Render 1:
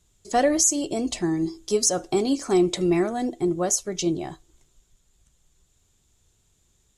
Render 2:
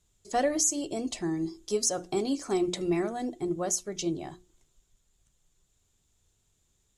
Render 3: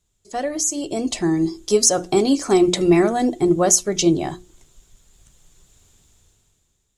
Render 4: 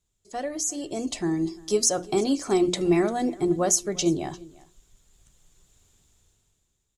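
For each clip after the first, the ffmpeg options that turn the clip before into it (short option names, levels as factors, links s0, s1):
-af "bandreject=f=60:t=h:w=6,bandreject=f=120:t=h:w=6,bandreject=f=180:t=h:w=6,bandreject=f=240:t=h:w=6,bandreject=f=300:t=h:w=6,bandreject=f=360:t=h:w=6,volume=0.501"
-af "dynaudnorm=f=200:g=9:m=7.08"
-af "aecho=1:1:348:0.0794,volume=0.473"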